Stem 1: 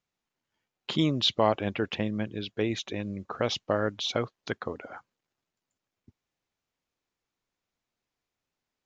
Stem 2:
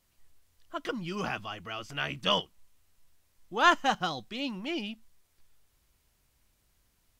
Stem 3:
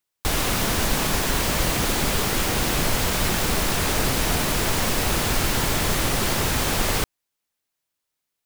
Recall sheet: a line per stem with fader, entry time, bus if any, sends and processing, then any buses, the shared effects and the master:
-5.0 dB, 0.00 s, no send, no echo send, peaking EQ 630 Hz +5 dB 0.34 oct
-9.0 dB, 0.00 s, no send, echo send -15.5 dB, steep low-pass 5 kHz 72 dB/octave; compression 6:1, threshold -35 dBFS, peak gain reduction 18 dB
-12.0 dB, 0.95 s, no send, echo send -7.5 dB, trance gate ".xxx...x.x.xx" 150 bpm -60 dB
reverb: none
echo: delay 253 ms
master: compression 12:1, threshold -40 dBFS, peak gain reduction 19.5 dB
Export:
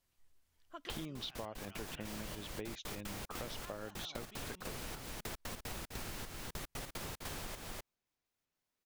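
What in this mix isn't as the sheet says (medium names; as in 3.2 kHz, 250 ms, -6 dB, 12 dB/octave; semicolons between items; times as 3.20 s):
stem 1: missing peaking EQ 630 Hz +5 dB 0.34 oct; stem 2: missing steep low-pass 5 kHz 72 dB/octave; stem 3: entry 0.95 s -> 0.65 s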